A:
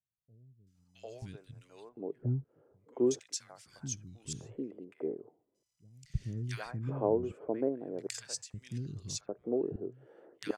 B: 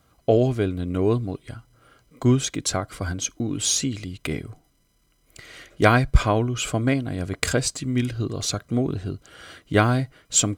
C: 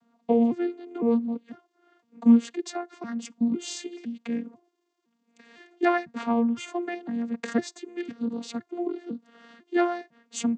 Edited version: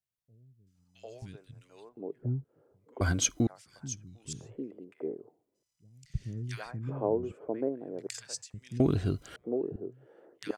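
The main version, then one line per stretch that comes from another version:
A
3.01–3.47 s: from B
8.80–9.36 s: from B
not used: C

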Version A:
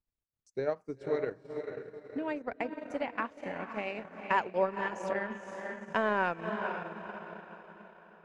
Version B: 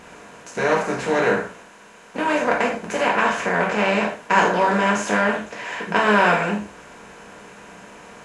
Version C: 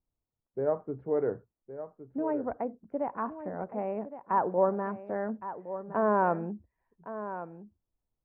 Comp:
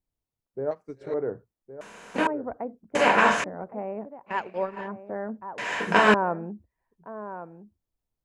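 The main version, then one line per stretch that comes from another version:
C
0.71–1.14 s: from A
1.81–2.27 s: from B
2.95–3.44 s: from B
4.31–4.85 s: from A, crossfade 0.10 s
5.58–6.14 s: from B

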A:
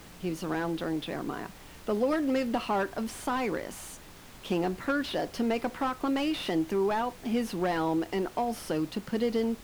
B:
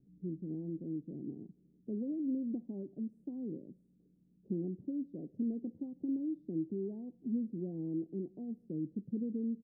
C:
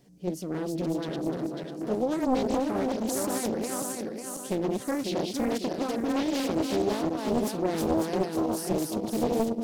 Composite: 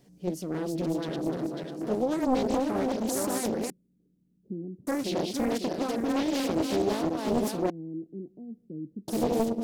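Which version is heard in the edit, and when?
C
3.70–4.87 s: from B
7.70–9.08 s: from B
not used: A

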